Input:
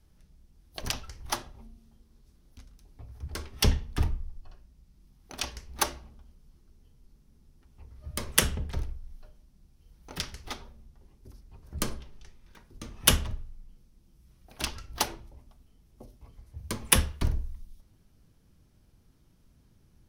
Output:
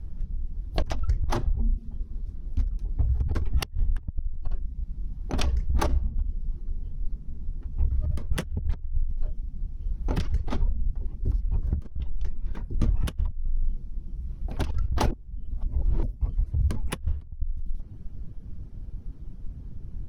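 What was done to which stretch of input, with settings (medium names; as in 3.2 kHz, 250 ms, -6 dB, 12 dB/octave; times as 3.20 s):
15.11–16.03 s: reverse
whole clip: reverb removal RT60 0.52 s; tilt EQ -4 dB/octave; compressor with a negative ratio -28 dBFS, ratio -1; trim +1.5 dB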